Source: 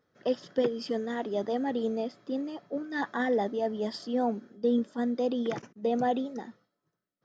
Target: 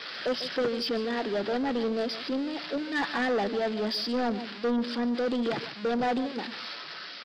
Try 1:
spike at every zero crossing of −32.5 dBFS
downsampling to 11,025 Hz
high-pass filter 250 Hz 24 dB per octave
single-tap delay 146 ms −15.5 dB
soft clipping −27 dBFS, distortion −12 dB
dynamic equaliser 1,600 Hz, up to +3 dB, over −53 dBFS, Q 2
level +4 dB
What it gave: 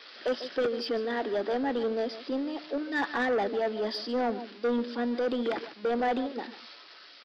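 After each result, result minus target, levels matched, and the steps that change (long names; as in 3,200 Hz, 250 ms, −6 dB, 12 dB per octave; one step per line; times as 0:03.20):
spike at every zero crossing: distortion −9 dB; 125 Hz band −5.5 dB
change: spike at every zero crossing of −23 dBFS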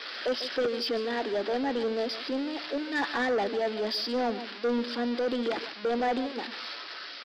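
125 Hz band −6.0 dB
change: high-pass filter 120 Hz 24 dB per octave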